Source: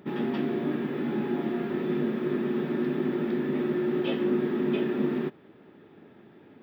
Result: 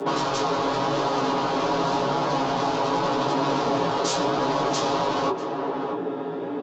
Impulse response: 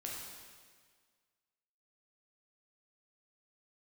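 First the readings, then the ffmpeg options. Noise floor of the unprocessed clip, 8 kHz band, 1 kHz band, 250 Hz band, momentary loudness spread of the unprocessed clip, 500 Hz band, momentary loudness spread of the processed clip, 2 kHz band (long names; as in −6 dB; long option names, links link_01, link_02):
−54 dBFS, can't be measured, +19.0 dB, −1.5 dB, 3 LU, +5.0 dB, 5 LU, +7.5 dB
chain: -filter_complex "[0:a]acrossover=split=160|1600[link_01][link_02][link_03];[link_02]alimiter=level_in=2dB:limit=-24dB:level=0:latency=1:release=35,volume=-2dB[link_04];[link_01][link_04][link_03]amix=inputs=3:normalize=0,bandreject=frequency=60:width_type=h:width=6,bandreject=frequency=120:width_type=h:width=6,bandreject=frequency=180:width_type=h:width=6,bandreject=frequency=240:width_type=h:width=6,bandreject=frequency=300:width_type=h:width=6,bandreject=frequency=360:width_type=h:width=6,aeval=exprs='0.0944*sin(PI/2*7.08*val(0)/0.0944)':channel_layout=same,aresample=16000,aresample=44100,aecho=1:1:7.4:0.93,asplit=2[link_05][link_06];[link_06]adelay=641.4,volume=-10dB,highshelf=frequency=4000:gain=-14.4[link_07];[link_05][link_07]amix=inputs=2:normalize=0,flanger=delay=15.5:depth=4.6:speed=0.88,bass=frequency=250:gain=-14,treble=frequency=4000:gain=6,acrossover=split=380|3000[link_08][link_09][link_10];[link_09]acompressor=threshold=-28dB:ratio=6[link_11];[link_08][link_11][link_10]amix=inputs=3:normalize=0,equalizer=frequency=125:width_type=o:width=1:gain=11,equalizer=frequency=250:width_type=o:width=1:gain=7,equalizer=frequency=500:width_type=o:width=1:gain=6,equalizer=frequency=1000:width_type=o:width=1:gain=10,equalizer=frequency=2000:width_type=o:width=1:gain=-8,afreqshift=17,volume=-2.5dB"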